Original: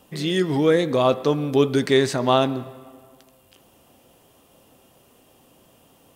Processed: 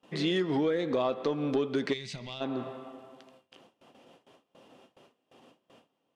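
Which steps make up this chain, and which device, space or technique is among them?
AM radio (BPF 190–4200 Hz; compressor 8:1, threshold -24 dBFS, peak gain reduction 12 dB; soft clip -17 dBFS, distortion -22 dB); gate with hold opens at -47 dBFS; spectral gain 1.93–2.41, 230–1900 Hz -17 dB

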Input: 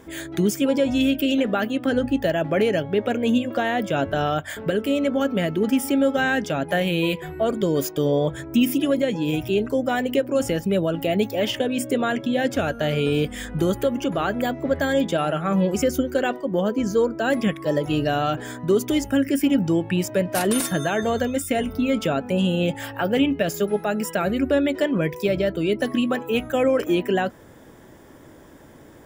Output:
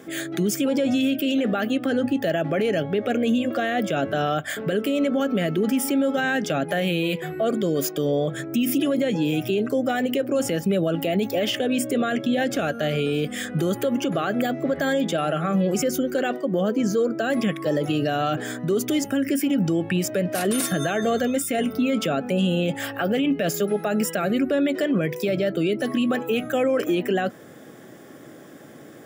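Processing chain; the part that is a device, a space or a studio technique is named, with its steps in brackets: PA system with an anti-feedback notch (HPF 130 Hz 24 dB/oct; Butterworth band-stop 940 Hz, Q 5; limiter -18 dBFS, peak gain reduction 9.5 dB); gain +3.5 dB

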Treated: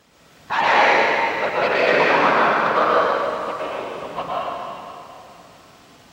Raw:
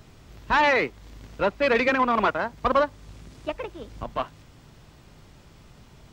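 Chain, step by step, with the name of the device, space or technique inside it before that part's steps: whispering ghost (whisperiser; HPF 510 Hz 6 dB/oct; reverb RT60 2.9 s, pre-delay 0.107 s, DRR -7.5 dB)

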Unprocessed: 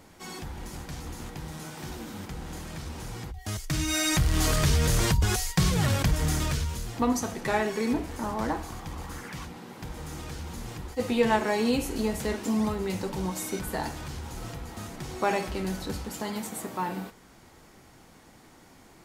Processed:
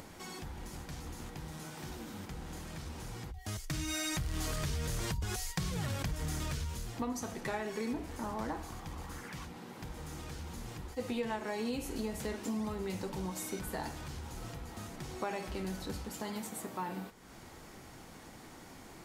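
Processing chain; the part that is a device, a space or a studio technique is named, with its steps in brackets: upward and downward compression (upward compressor, threshold -36 dBFS; compressor 4:1, threshold -27 dBFS, peak gain reduction 8.5 dB); gain -6 dB

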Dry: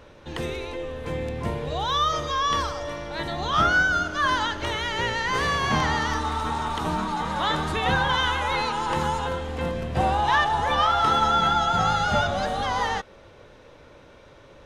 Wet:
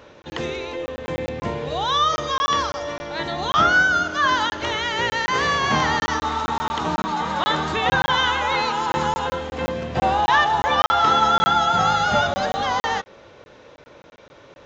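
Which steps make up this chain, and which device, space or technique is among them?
call with lost packets (HPF 170 Hz 6 dB/oct; downsampling 16000 Hz; packet loss packets of 20 ms random); gain +4 dB

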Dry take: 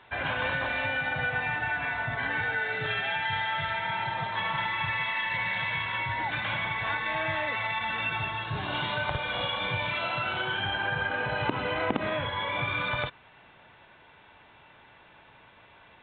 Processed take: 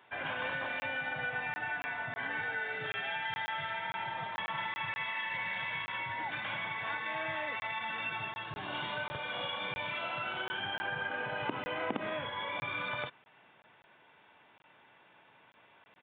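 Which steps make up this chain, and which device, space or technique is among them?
call with lost packets (HPF 160 Hz 12 dB/oct; downsampling 8000 Hz; packet loss random); gain -6.5 dB

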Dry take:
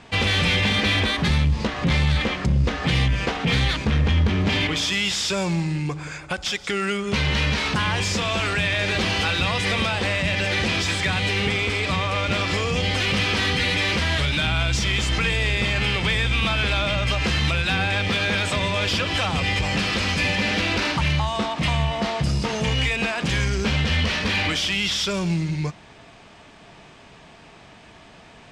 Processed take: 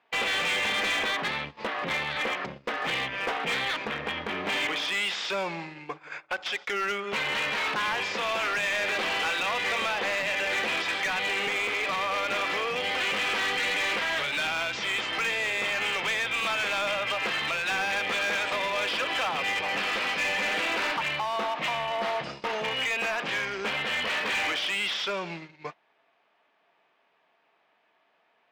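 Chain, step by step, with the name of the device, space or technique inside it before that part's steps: walkie-talkie (BPF 530–2700 Hz; hard clip -24 dBFS, distortion -14 dB; gate -37 dBFS, range -18 dB)

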